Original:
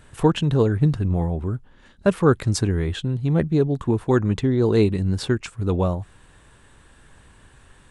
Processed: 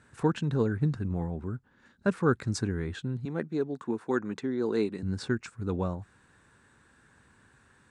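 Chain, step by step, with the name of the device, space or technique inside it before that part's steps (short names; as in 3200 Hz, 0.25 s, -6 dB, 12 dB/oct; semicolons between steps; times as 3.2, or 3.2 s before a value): 3.25–5.03 HPF 260 Hz 12 dB/oct; car door speaker (speaker cabinet 91–8900 Hz, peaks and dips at 230 Hz +4 dB, 630 Hz -4 dB, 1500 Hz +6 dB, 3100 Hz -7 dB); gain -8.5 dB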